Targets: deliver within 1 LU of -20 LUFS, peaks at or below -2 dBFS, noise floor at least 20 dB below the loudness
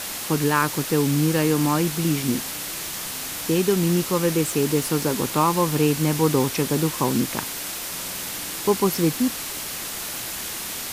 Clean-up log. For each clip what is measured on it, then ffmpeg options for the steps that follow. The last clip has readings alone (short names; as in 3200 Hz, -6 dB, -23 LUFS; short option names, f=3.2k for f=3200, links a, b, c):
noise floor -32 dBFS; noise floor target -43 dBFS; loudness -23.0 LUFS; peak -5.5 dBFS; loudness target -20.0 LUFS
-> -af "afftdn=nr=11:nf=-32"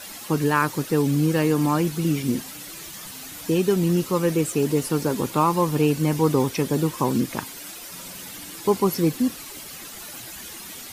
noise floor -39 dBFS; noise floor target -43 dBFS
-> -af "afftdn=nr=6:nf=-39"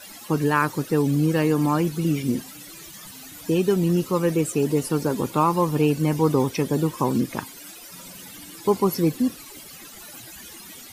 noise floor -43 dBFS; loudness -22.5 LUFS; peak -6.5 dBFS; loudness target -20.0 LUFS
-> -af "volume=2.5dB"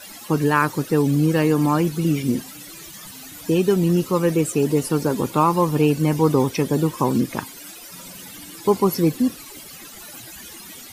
loudness -20.0 LUFS; peak -4.0 dBFS; noise floor -40 dBFS